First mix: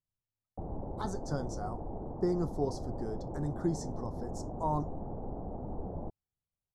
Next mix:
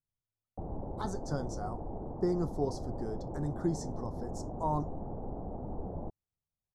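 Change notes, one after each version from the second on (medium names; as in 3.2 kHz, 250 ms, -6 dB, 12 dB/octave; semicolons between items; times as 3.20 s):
no change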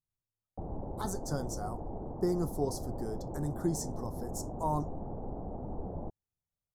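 master: remove low-pass 4.8 kHz 12 dB/octave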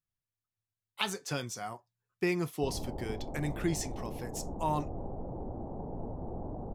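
speech: remove Butterworth band-stop 2.6 kHz, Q 0.57; background: entry +2.05 s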